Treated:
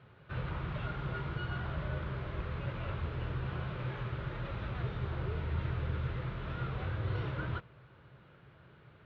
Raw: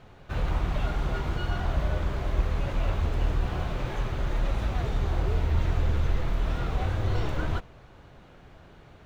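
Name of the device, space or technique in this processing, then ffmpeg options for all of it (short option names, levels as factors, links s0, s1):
guitar cabinet: -af "highpass=83,equalizer=f=130:t=q:w=4:g=8,equalizer=f=260:t=q:w=4:g=-6,equalizer=f=740:t=q:w=4:g=-8,equalizer=f=1400:t=q:w=4:g=4,lowpass=f=3700:w=0.5412,lowpass=f=3700:w=1.3066,volume=0.473"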